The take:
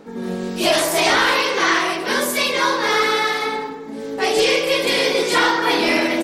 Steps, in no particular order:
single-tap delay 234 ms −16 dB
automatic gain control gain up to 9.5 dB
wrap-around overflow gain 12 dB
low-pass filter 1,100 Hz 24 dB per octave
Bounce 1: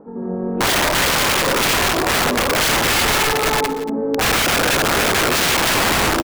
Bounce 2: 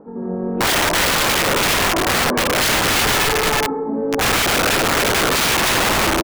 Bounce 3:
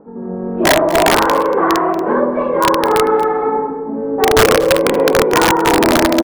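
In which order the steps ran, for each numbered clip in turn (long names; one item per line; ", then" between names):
low-pass filter, then automatic gain control, then wrap-around overflow, then single-tap delay
low-pass filter, then automatic gain control, then single-tap delay, then wrap-around overflow
low-pass filter, then wrap-around overflow, then single-tap delay, then automatic gain control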